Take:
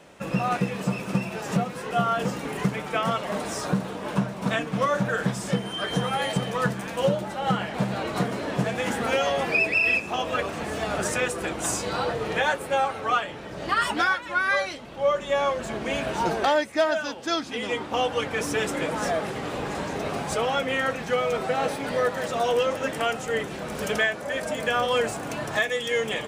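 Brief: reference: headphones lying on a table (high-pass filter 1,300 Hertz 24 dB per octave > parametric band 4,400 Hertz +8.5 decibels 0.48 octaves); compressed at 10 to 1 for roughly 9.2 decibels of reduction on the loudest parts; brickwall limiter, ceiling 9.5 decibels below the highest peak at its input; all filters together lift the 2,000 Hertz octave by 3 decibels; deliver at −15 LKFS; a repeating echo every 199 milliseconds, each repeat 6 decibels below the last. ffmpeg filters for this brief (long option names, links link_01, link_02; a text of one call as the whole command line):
ffmpeg -i in.wav -af "equalizer=frequency=2000:width_type=o:gain=4,acompressor=threshold=-26dB:ratio=10,alimiter=level_in=0.5dB:limit=-24dB:level=0:latency=1,volume=-0.5dB,highpass=frequency=1300:width=0.5412,highpass=frequency=1300:width=1.3066,equalizer=frequency=4400:width_type=o:width=0.48:gain=8.5,aecho=1:1:199|398|597|796|995|1194:0.501|0.251|0.125|0.0626|0.0313|0.0157,volume=19.5dB" out.wav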